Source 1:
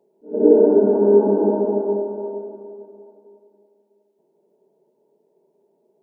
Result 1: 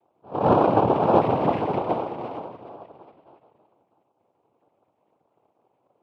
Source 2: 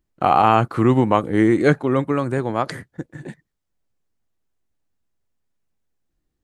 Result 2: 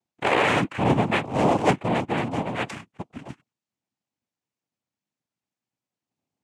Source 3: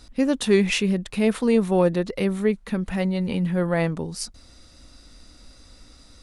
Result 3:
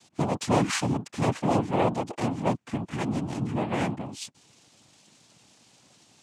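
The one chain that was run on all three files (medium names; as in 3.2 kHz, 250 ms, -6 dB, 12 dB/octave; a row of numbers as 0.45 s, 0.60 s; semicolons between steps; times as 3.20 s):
dynamic bell 2.1 kHz, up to +5 dB, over -45 dBFS, Q 7.6; noise-vocoded speech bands 4; trim -5 dB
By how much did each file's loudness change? -5.0 LU, -5.0 LU, -5.0 LU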